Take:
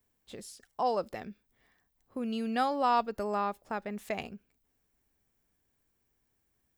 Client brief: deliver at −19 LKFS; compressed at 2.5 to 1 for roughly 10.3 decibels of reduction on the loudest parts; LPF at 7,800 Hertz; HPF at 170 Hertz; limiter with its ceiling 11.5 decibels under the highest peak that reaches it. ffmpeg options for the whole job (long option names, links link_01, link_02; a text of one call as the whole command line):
ffmpeg -i in.wav -af "highpass=170,lowpass=7800,acompressor=threshold=-38dB:ratio=2.5,volume=26dB,alimiter=limit=-8.5dB:level=0:latency=1" out.wav